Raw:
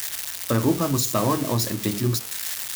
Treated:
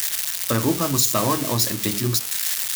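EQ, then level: tilt shelf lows -3.5 dB, about 1.3 kHz; +2.5 dB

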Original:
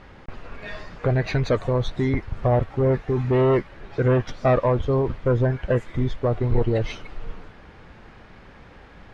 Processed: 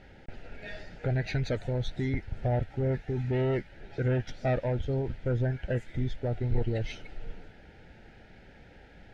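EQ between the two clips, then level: Butterworth band-stop 1.1 kHz, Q 2.2; dynamic bell 470 Hz, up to -5 dB, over -33 dBFS, Q 0.79; -6.0 dB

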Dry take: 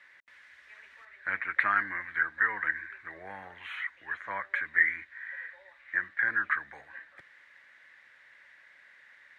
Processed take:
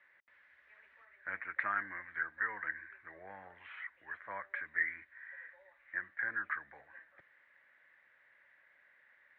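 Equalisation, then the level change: low-pass 2.3 kHz 12 dB/octave; peaking EQ 580 Hz +3.5 dB 0.68 oct; -8.0 dB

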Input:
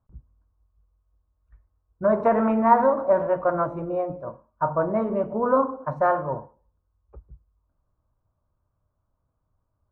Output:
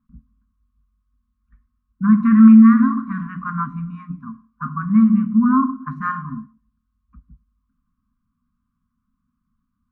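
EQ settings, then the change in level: brick-wall FIR band-stop 270–1000 Hz; tone controls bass +11 dB, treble -8 dB; resonant low shelf 160 Hz -13 dB, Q 3; +3.5 dB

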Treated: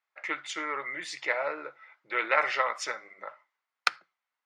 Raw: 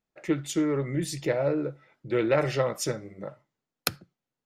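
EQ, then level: resonant high-pass 1.1 kHz, resonance Q 1.8; distance through air 120 m; peaking EQ 2.1 kHz +7 dB 0.25 oct; +3.0 dB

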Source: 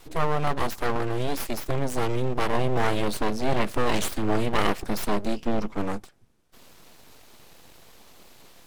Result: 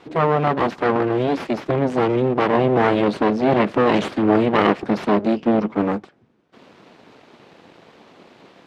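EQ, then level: band-pass 230–2900 Hz; bass shelf 380 Hz +10 dB; +6.0 dB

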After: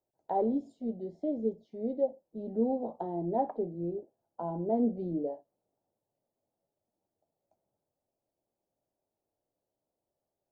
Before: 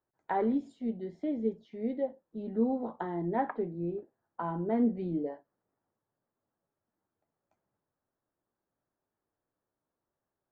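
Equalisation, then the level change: peaking EQ 690 Hz -6 dB 0.32 oct; dynamic bell 1.6 kHz, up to -5 dB, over -54 dBFS, Q 1.3; FFT filter 250 Hz 0 dB, 460 Hz +3 dB, 680 Hz +12 dB, 1.1 kHz -9 dB, 2.1 kHz -16 dB, 4.8 kHz -2 dB; -1.5 dB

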